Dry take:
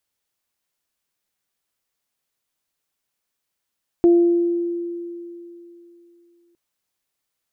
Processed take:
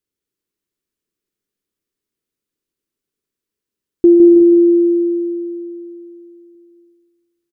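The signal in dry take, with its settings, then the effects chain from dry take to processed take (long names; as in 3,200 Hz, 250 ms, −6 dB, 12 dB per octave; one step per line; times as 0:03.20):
harmonic partials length 2.51 s, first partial 344 Hz, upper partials −18.5 dB, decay 3.07 s, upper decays 1.00 s, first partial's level −9 dB
drawn EQ curve 130 Hz 0 dB, 400 Hz +7 dB, 700 Hz −15 dB, 1,200 Hz −8 dB
on a send: repeating echo 160 ms, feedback 48%, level −7 dB
on the sum: reverb whose tail is shaped and stops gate 400 ms rising, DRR 5.5 dB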